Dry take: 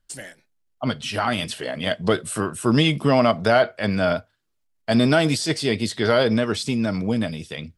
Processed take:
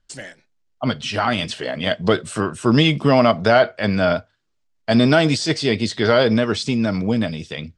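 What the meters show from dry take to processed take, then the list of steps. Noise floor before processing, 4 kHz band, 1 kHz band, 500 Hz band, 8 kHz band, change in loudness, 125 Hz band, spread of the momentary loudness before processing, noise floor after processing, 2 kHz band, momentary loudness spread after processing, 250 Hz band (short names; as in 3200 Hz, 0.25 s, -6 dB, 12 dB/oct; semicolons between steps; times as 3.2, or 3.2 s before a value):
-70 dBFS, +3.0 dB, +3.0 dB, +3.0 dB, -1.0 dB, +3.0 dB, +3.0 dB, 10 LU, -67 dBFS, +3.0 dB, 11 LU, +3.0 dB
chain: LPF 7400 Hz 24 dB/oct; gain +3 dB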